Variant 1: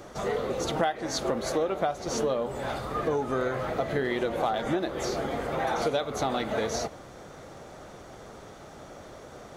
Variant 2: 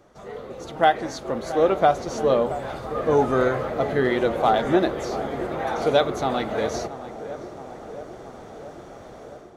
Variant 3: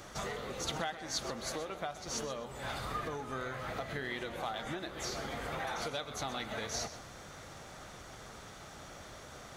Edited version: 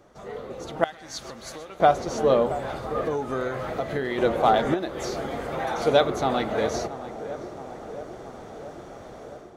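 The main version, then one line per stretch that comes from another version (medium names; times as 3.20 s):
2
0.84–1.80 s: from 3
3.05–4.18 s: from 1
4.74–5.87 s: from 1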